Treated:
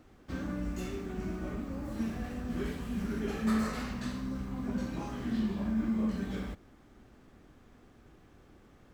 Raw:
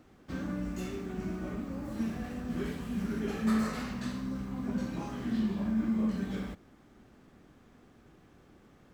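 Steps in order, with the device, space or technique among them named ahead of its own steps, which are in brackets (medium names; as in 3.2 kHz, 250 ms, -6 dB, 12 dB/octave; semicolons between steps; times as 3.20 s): low shelf boost with a cut just above (bass shelf 80 Hz +7 dB; peaking EQ 170 Hz -3.5 dB 0.87 oct)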